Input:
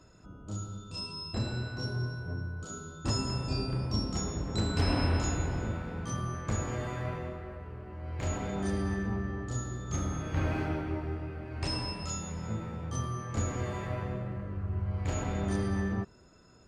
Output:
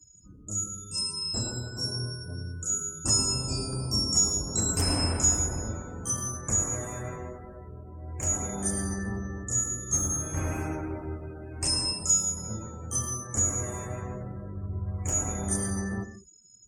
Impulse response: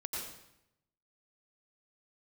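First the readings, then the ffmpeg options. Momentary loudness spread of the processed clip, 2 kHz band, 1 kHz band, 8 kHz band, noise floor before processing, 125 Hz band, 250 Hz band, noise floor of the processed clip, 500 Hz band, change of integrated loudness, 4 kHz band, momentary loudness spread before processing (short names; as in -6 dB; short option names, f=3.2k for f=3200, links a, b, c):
15 LU, -1.5 dB, -0.5 dB, +18.0 dB, -56 dBFS, -0.5 dB, -0.5 dB, -50 dBFS, -0.5 dB, +6.0 dB, +8.5 dB, 9 LU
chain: -filter_complex "[0:a]asplit=2[a][b];[1:a]atrim=start_sample=2205,afade=t=out:st=0.24:d=0.01,atrim=end_sample=11025,lowshelf=f=140:g=-4[c];[b][c]afir=irnorm=-1:irlink=0,volume=-4.5dB[d];[a][d]amix=inputs=2:normalize=0,aexciter=amount=10.9:drive=7:freq=6.1k,afftdn=nr=26:nf=-43,volume=-3.5dB"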